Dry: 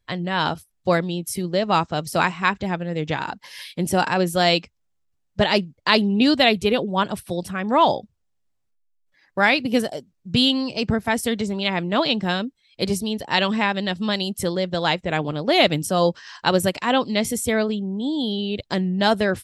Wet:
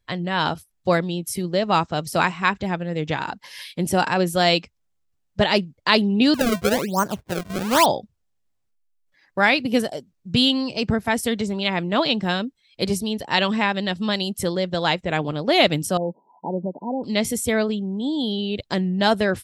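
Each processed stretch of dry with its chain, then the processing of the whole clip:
6.34–7.86 s: low-pass 1.9 kHz 24 dB/octave + decimation with a swept rate 29×, swing 160% 1.1 Hz
15.97–17.04 s: tilt EQ -2.5 dB/octave + compression 2:1, threshold -28 dBFS + brick-wall FIR band-pass 160–1000 Hz
whole clip: none

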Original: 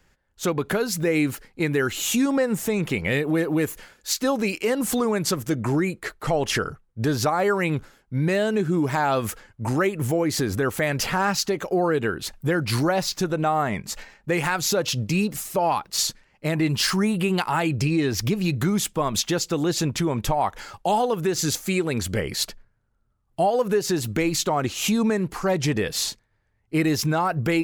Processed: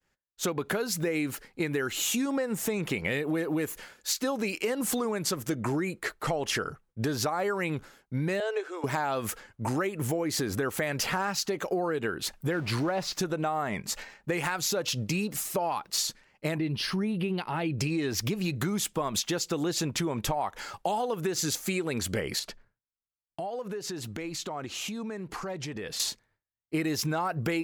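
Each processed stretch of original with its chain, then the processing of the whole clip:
8.40–8.84 s: elliptic high-pass 430 Hz, stop band 50 dB + distance through air 63 m
12.52–13.13 s: jump at every zero crossing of -32 dBFS + low-pass 2.9 kHz 6 dB/octave
16.58–17.78 s: boxcar filter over 6 samples + peaking EQ 1.2 kHz -9.5 dB 2.1 oct
22.39–26.00 s: treble shelf 9.8 kHz -10.5 dB + compression, threshold -32 dBFS
whole clip: bass shelf 130 Hz -8.5 dB; compression, threshold -26 dBFS; expander -56 dBFS

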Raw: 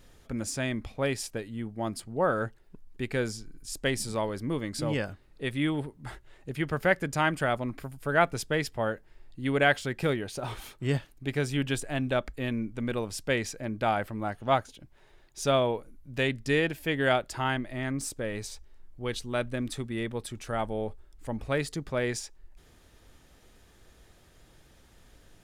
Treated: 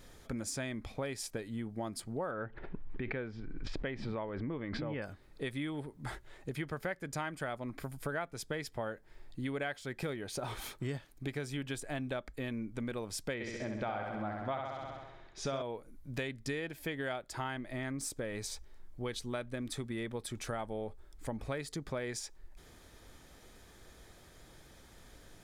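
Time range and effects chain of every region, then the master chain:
2.31–5.02 s: low-pass 2.8 kHz 24 dB/octave + swell ahead of each attack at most 30 dB/s
13.34–15.62 s: low-pass 3.8 kHz + flutter echo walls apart 11.3 m, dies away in 0.91 s
whole clip: bass shelf 160 Hz -3.5 dB; compression 6:1, threshold -38 dBFS; band-stop 2.8 kHz, Q 11; trim +2.5 dB

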